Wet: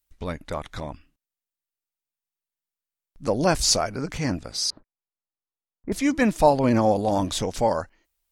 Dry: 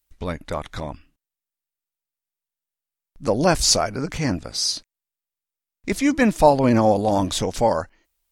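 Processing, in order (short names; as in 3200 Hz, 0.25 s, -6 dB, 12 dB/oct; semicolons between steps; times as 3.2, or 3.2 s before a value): 4.7–5.92 LPF 1300 Hz 24 dB/oct; gain -3 dB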